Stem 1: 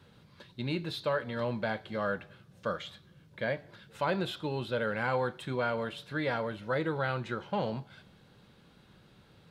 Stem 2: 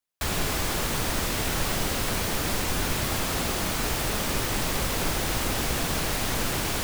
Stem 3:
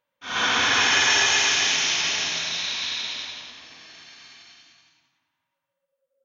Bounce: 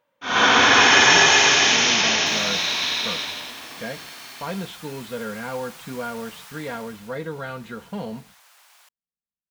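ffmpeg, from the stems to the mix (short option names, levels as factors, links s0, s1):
-filter_complex "[0:a]agate=range=0.00316:threshold=0.00398:ratio=16:detection=peak,lowshelf=f=170:g=9.5,aecho=1:1:4.3:0.66,adelay=400,volume=0.75[s0];[1:a]highpass=f=780:w=0.5412,highpass=f=780:w=1.3066,adelay=2050,volume=0.211,afade=t=out:st=6.48:d=0.72:silence=0.298538[s1];[2:a]equalizer=f=430:w=0.33:g=8,volume=1.41[s2];[s0][s1][s2]amix=inputs=3:normalize=0"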